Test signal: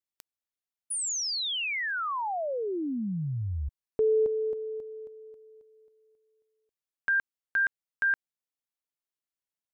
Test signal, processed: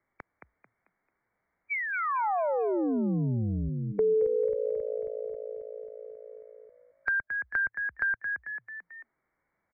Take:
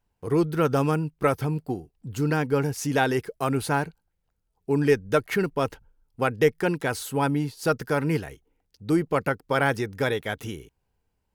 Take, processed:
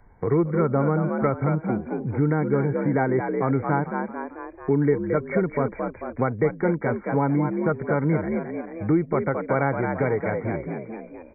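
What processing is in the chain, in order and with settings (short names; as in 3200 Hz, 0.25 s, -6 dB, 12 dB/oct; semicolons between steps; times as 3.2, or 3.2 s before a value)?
brick-wall FIR low-pass 2300 Hz; dynamic EQ 1700 Hz, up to -7 dB, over -43 dBFS, Q 3.5; frequency-shifting echo 0.221 s, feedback 34%, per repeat +56 Hz, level -7.5 dB; harmonic-percussive split harmonic +5 dB; three-band squash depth 70%; gain -2 dB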